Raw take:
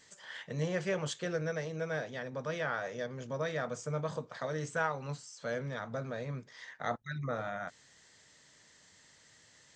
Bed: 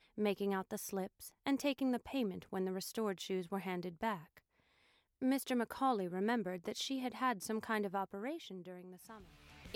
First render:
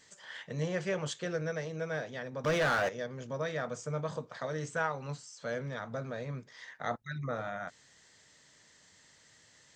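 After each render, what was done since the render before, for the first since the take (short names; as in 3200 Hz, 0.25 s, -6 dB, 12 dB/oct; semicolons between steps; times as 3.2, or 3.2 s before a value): 2.44–2.89 sample leveller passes 3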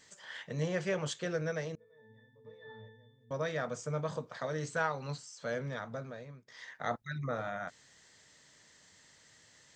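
1.75–3.31 octave resonator A, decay 0.74 s; 4.63–5.18 bell 4300 Hz +10.5 dB 0.22 oct; 5.74–6.48 fade out, to -21.5 dB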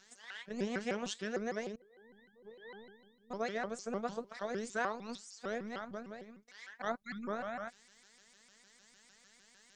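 robotiser 221 Hz; shaped vibrato saw up 6.6 Hz, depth 250 cents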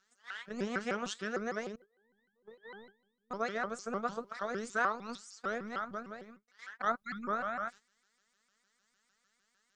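gate -53 dBFS, range -14 dB; bell 1300 Hz +11 dB 0.48 oct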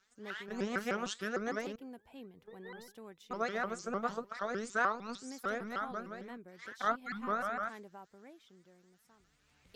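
add bed -13 dB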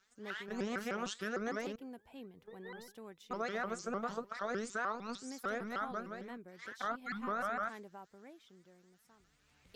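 limiter -25 dBFS, peak gain reduction 8 dB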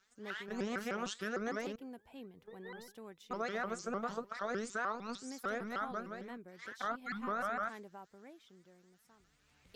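nothing audible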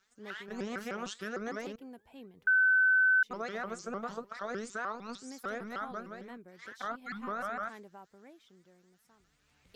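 2.47–3.23 bleep 1520 Hz -21.5 dBFS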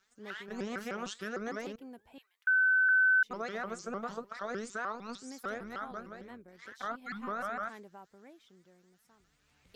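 2.18–2.89 HPF 1300 Hz 24 dB/oct; 5.54–6.83 AM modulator 140 Hz, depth 25%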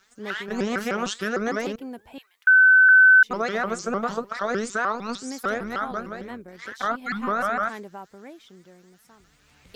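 gain +12 dB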